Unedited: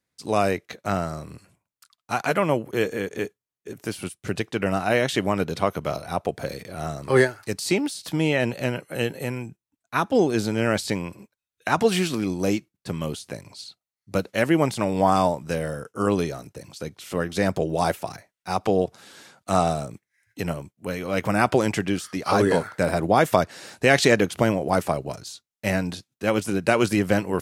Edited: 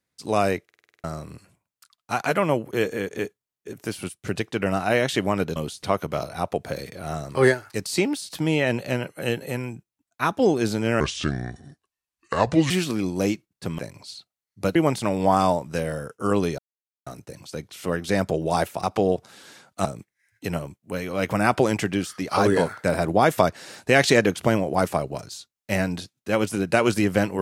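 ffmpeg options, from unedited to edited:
-filter_complex "[0:a]asplit=18[a][b][c][d][e][f][g][h][i][j][k][l][m][n][o][p][q][r];[a]atrim=end=0.692[s];[b]atrim=start=0.638:end=0.692[t];[c]atrim=start=0.638:end=0.692[u];[d]atrim=start=0.638:end=0.692[v];[e]atrim=start=0.638:end=0.692[w];[f]atrim=start=0.638:end=0.692[x];[g]atrim=start=0.638:end=0.692[y];[h]atrim=start=0.638:end=0.692[z];[i]atrim=start=1.038:end=5.562[aa];[j]atrim=start=13.018:end=13.292[ab];[k]atrim=start=5.558:end=10.734[ac];[l]atrim=start=10.73:end=11.94,asetpts=PTS-STARTPTS,asetrate=31311,aresample=44100,atrim=end_sample=75156,asetpts=PTS-STARTPTS[ad];[m]atrim=start=11.936:end=13.022[ae];[n]atrim=start=13.288:end=14.262[af];[o]atrim=start=14.508:end=16.34,asetpts=PTS-STARTPTS,afade=t=out:st=1.828:d=0.004:c=hsin,apad=pad_dur=0.48[ag];[p]atrim=start=16.34:end=18.112,asetpts=PTS-STARTPTS,afade=t=in:d=0.004:c=hsin[ah];[q]atrim=start=18.528:end=19.552[ai];[r]atrim=start=19.798[aj];[s][t]acrossfade=d=0.004:c1=hsin:c2=hsin[ak];[ak][u]acrossfade=d=0.004:c1=hsin:c2=hsin[al];[al][v]acrossfade=d=0.004:c1=hsin:c2=hsin[am];[am][w]acrossfade=d=0.004:c1=hsin:c2=hsin[an];[an][x]acrossfade=d=0.004:c1=hsin:c2=hsin[ao];[ao][y]acrossfade=d=0.004:c1=hsin:c2=hsin[ap];[ap][z]acrossfade=d=0.004:c1=hsin:c2=hsin[aq];[aq][aa]acrossfade=d=0.004:c1=hsin:c2=hsin[ar];[ar][ab]acrossfade=d=0.004:c1=hsin:c2=hsin[as];[as][ac]acrossfade=d=0.004:c1=hsin:c2=hsin[at];[at][ad]acrossfade=d=0.004:c1=hsin:c2=hsin[au];[au][ae]acrossfade=d=0.004:c1=hsin:c2=hsin[av];[av][af]acrossfade=d=0.004:c1=hsin:c2=hsin[aw];[ag][ah]concat=n=2:v=0:a=1[ax];[aw][ax]acrossfade=d=0.004:c1=hsin:c2=hsin[ay];[ay][ai]acrossfade=d=0.004:c1=hsin:c2=hsin[az];[az][aj]acrossfade=d=0.004:c1=hsin:c2=hsin"

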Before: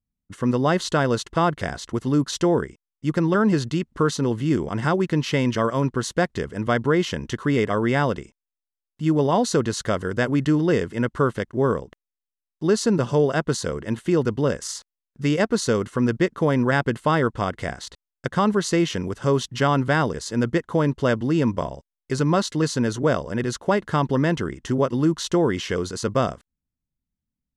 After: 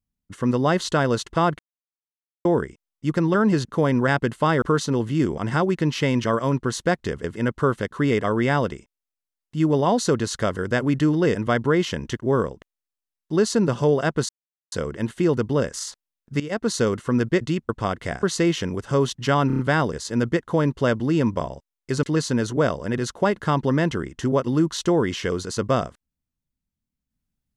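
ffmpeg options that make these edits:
-filter_complex "[0:a]asplit=19[a][b][c][d][e][f][g][h][i][j][k][l][m][n][o][p][q][r][s];[a]atrim=end=1.59,asetpts=PTS-STARTPTS,afade=t=out:st=1.586:d=0.004:c=hsin[t];[b]atrim=start=1.59:end=2.45,asetpts=PTS-STARTPTS,volume=0[u];[c]atrim=start=2.45:end=3.652,asetpts=PTS-STARTPTS,afade=t=in:d=0.004:c=hsin[v];[d]atrim=start=16.288:end=17.262[w];[e]atrim=start=3.928:end=6.552[x];[f]atrim=start=10.808:end=11.482[y];[g]atrim=start=7.368:end=10.812[z];[h]atrim=start=6.548:end=7.372[aa];[i]atrim=start=11.478:end=13.6,asetpts=PTS-STARTPTS,afade=t=out:st=2.118:d=0.004:c=hsin,apad=pad_dur=0.43[ab];[j]atrim=start=13.6:end=15.28,asetpts=PTS-STARTPTS,afade=t=in:d=0.004:c=hsin,afade=t=out:st=1.676:d=0.004:c=hsin:silence=0.158489[ac];[k]atrim=start=15.28:end=16.292,asetpts=PTS-STARTPTS,afade=t=in:d=0.34:silence=0.158489[ad];[l]atrim=start=3.648:end=3.932[ae];[m]atrim=start=17.258:end=17.802[af];[n]atrim=start=18.558:end=19.832[ag];[o]atrim=start=19.798:end=19.832[ah];[p]atrim=start=19.798:end=19.832[ai];[q]atrim=start=19.798:end=19.832[aj];[r]atrim=start=19.798:end=22.242[ak];[s]atrim=start=22.488[al];[t][u][v]concat=n=3:v=0:a=1[am];[am][w]acrossfade=d=0.004:c1=hsin:c2=hsin[an];[an][x]acrossfade=d=0.004:c1=hsin:c2=hsin[ao];[ao][y]acrossfade=d=0.004:c1=hsin:c2=hsin[ap];[ap][z]acrossfade=d=0.004:c1=hsin:c2=hsin[aq];[aq][aa]acrossfade=d=0.004:c1=hsin:c2=hsin[ar];[ab][ac][ad]concat=n=3:v=0:a=1[as];[ar][as]acrossfade=d=0.004:c1=hsin:c2=hsin[at];[at][ae]acrossfade=d=0.004:c1=hsin:c2=hsin[au];[au][af]acrossfade=d=0.004:c1=hsin:c2=hsin[av];[av][ag]acrossfade=d=0.004:c1=hsin:c2=hsin[aw];[aw][ah]acrossfade=d=0.004:c1=hsin:c2=hsin[ax];[ax][ai]acrossfade=d=0.004:c1=hsin:c2=hsin[ay];[ay][aj]acrossfade=d=0.004:c1=hsin:c2=hsin[az];[az][ak]acrossfade=d=0.004:c1=hsin:c2=hsin[ba];[ba][al]acrossfade=d=0.004:c1=hsin:c2=hsin"

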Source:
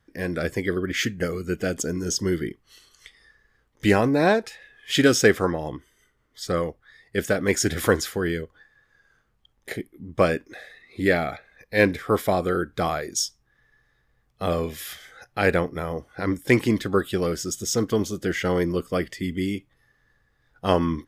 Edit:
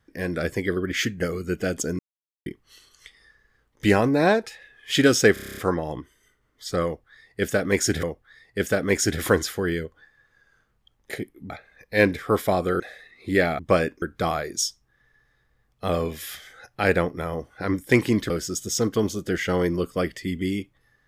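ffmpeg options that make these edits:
-filter_complex "[0:a]asplit=17[a][b][c][d][e][f][g][h][i][j][k][l][m][n][o][p][q];[a]atrim=end=1.99,asetpts=PTS-STARTPTS,afade=t=out:st=1.986:d=0.004:c=hsin[r];[b]atrim=start=1.99:end=2.46,asetpts=PTS-STARTPTS,volume=0[s];[c]atrim=start=2.46:end=5.362,asetpts=PTS-STARTPTS,afade=t=in:d=0.004:c=hsin[t];[d]atrim=start=5.328:end=5.362[u];[e]atrim=start=5.328:end=5.362[v];[f]atrim=start=5.328:end=5.362[w];[g]atrim=start=5.328:end=5.362[x];[h]atrim=start=5.328:end=5.362[y];[i]atrim=start=5.328:end=5.362[z];[j]atrim=start=5.328:end=5.362[aa];[k]atrim=start=5.328:end=7.792[ab];[l]atrim=start=6.608:end=10.082[ac];[m]atrim=start=11.298:end=12.602[ad];[n]atrim=start=10.508:end=11.302[ae];[o]atrim=start=10.078:end=10.512[af];[p]atrim=start=12.598:end=16.882[ag];[q]atrim=start=17.258[ah];[r][s][t]concat=n=3:v=0:a=1[ai];[ai][u]acrossfade=d=0.004:c1=hsin:c2=hsin[aj];[aj][v]acrossfade=d=0.004:c1=hsin:c2=hsin[ak];[ak][w]acrossfade=d=0.004:c1=hsin:c2=hsin[al];[al][x]acrossfade=d=0.004:c1=hsin:c2=hsin[am];[am][y]acrossfade=d=0.004:c1=hsin:c2=hsin[an];[an][z]acrossfade=d=0.004:c1=hsin:c2=hsin[ao];[ao][aa]acrossfade=d=0.004:c1=hsin:c2=hsin[ap];[ap][ab]acrossfade=d=0.004:c1=hsin:c2=hsin[aq];[aq][ac]acrossfade=d=0.004:c1=hsin:c2=hsin[ar];[ar][ad]acrossfade=d=0.004:c1=hsin:c2=hsin[as];[as][ae]acrossfade=d=0.004:c1=hsin:c2=hsin[at];[at][af]acrossfade=d=0.004:c1=hsin:c2=hsin[au];[au][ag]acrossfade=d=0.004:c1=hsin:c2=hsin[av];[av][ah]acrossfade=d=0.004:c1=hsin:c2=hsin"

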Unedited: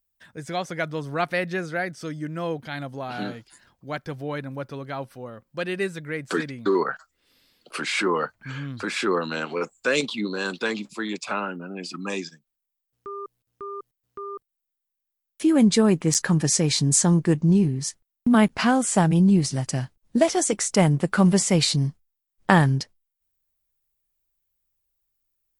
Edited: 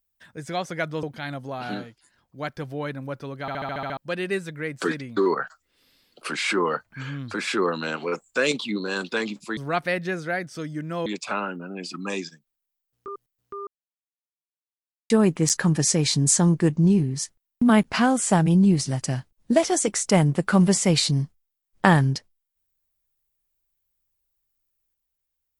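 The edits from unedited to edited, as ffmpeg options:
-filter_complex "[0:a]asplit=17[a][b][c][d][e][f][g][h][i][j][k][l][m][n][o][p][q];[a]atrim=end=1.032[r];[b]atrim=start=2.518:end=3.48,asetpts=PTS-STARTPTS,afade=t=out:st=0.672:d=0.29:silence=0.375837[s];[c]atrim=start=3.48:end=3.63,asetpts=PTS-STARTPTS,volume=-8.5dB[t];[d]atrim=start=3.63:end=4.972,asetpts=PTS-STARTPTS,afade=t=in:d=0.29:silence=0.375837[u];[e]atrim=start=4.898:end=4.972[v];[f]atrim=start=4.898:end=4.972[w];[g]atrim=start=4.898:end=4.972[x];[h]atrim=start=4.898:end=4.972[y];[i]atrim=start=4.898:end=4.972[z];[j]atrim=start=4.898:end=4.972[aa];[k]atrim=start=4.898:end=4.972[ab];[l]atrim=start=5.458:end=11.062[ac];[m]atrim=start=1.028:end=2.522[ad];[n]atrim=start=11.058:end=13.082[ae];[o]atrim=start=13.728:end=14.32,asetpts=PTS-STARTPTS,afade=t=out:st=0.588:d=0.004:c=hsin[af];[p]atrim=start=14.32:end=15.75,asetpts=PTS-STARTPTS,volume=0[ag];[q]atrim=start=15.75,asetpts=PTS-STARTPTS,afade=t=in:d=0.004:c=hsin[ah];[s][t][u]concat=n=3:v=0:a=1[ai];[r][ai]acrossfade=d=0.004:c1=hsin:c2=hsin[aj];[aj][v]acrossfade=d=0.004:c1=hsin:c2=hsin[ak];[ak][w]acrossfade=d=0.004:c1=hsin:c2=hsin[al];[al][x]acrossfade=d=0.004:c1=hsin:c2=hsin[am];[am][y]acrossfade=d=0.004:c1=hsin:c2=hsin[an];[an][z]acrossfade=d=0.004:c1=hsin:c2=hsin[ao];[ao][aa]acrossfade=d=0.004:c1=hsin:c2=hsin[ap];[ap][ab]acrossfade=d=0.004:c1=hsin:c2=hsin[aq];[aq][ac]acrossfade=d=0.004:c1=hsin:c2=hsin[ar];[ar][ad]acrossfade=d=0.004:c1=hsin:c2=hsin[as];[as][ae]acrossfade=d=0.004:c1=hsin:c2=hsin[at];[af][ag][ah]concat=n=3:v=0:a=1[au];[at][au]acrossfade=d=0.004:c1=hsin:c2=hsin"

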